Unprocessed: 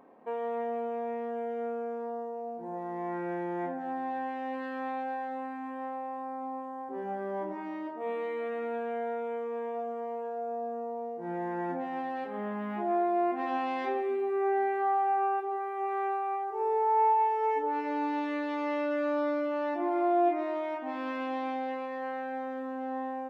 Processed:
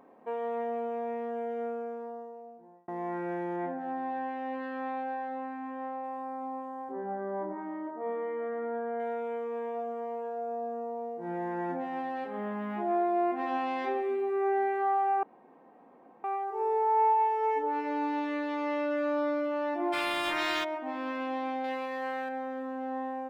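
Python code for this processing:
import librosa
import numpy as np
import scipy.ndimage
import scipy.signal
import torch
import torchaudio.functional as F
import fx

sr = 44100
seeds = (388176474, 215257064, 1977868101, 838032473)

y = fx.lowpass(x, sr, hz=3800.0, slope=6, at=(3.56, 6.04))
y = fx.savgol(y, sr, points=41, at=(6.92, 9.0))
y = fx.spectral_comp(y, sr, ratio=10.0, at=(19.92, 20.63), fade=0.02)
y = fx.high_shelf(y, sr, hz=2200.0, db=10.5, at=(21.64, 22.29))
y = fx.edit(y, sr, fx.fade_out_span(start_s=1.62, length_s=1.26),
    fx.room_tone_fill(start_s=15.23, length_s=1.01), tone=tone)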